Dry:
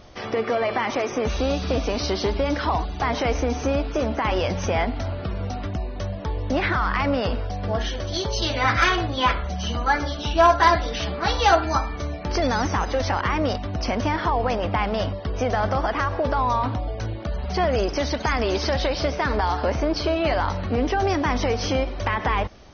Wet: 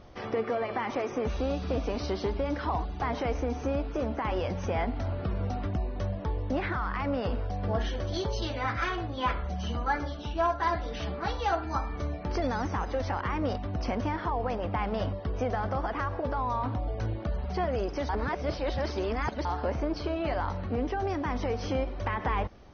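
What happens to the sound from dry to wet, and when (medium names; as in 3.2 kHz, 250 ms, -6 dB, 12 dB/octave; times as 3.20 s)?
18.09–19.45 s: reverse
whole clip: treble shelf 2.5 kHz -10 dB; band-stop 630 Hz, Q 18; gain riding within 4 dB 0.5 s; trim -6.5 dB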